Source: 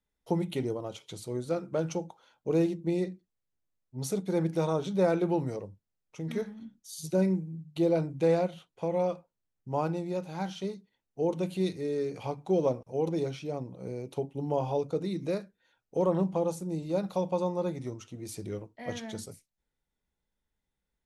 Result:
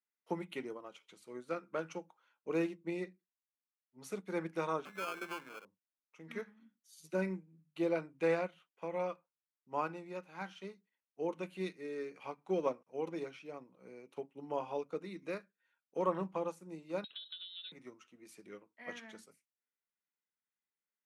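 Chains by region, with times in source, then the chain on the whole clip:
0:04.85–0:05.65: spectral tilt +3.5 dB per octave + downward compressor 5 to 1, threshold −30 dBFS + sample-rate reduction 1,900 Hz
0:17.04–0:17.72: high-frequency loss of the air 160 metres + downward compressor, threshold −33 dBFS + voice inversion scrambler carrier 4,000 Hz
whole clip: high-pass filter 190 Hz 24 dB per octave; flat-topped bell 1,700 Hz +10.5 dB; expander for the loud parts 1.5 to 1, over −45 dBFS; level −6 dB

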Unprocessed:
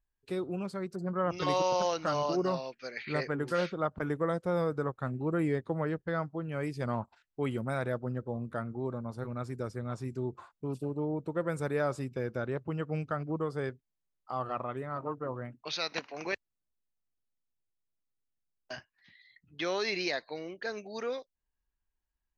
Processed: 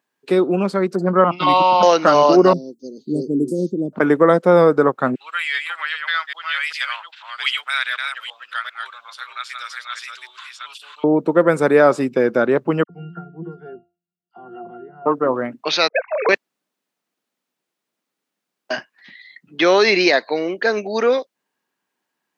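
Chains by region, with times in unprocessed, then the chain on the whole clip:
0:01.24–0:01.83: downward expander −36 dBFS + phaser with its sweep stopped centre 1,700 Hz, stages 6
0:02.53–0:03.93: elliptic band-stop filter 340–7,900 Hz, stop band 70 dB + parametric band 3,900 Hz +7 dB 1.3 octaves
0:05.15–0:11.04: delay that plays each chunk backwards 394 ms, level −4.5 dB + high-pass filter 1,500 Hz 24 dB per octave + parametric band 3,300 Hz +15 dB 0.9 octaves
0:12.83–0:15.06: bass and treble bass +11 dB, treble +2 dB + resonances in every octave F, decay 0.32 s + all-pass dispersion lows, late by 63 ms, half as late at 2,100 Hz
0:15.88–0:16.29: three sine waves on the formant tracks + downward expander −52 dBFS + low-pass that shuts in the quiet parts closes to 340 Hz, open at −37 dBFS
whole clip: high-pass filter 200 Hz 24 dB per octave; high-shelf EQ 4,900 Hz −9 dB; boost into a limiter +20 dB; level −1 dB

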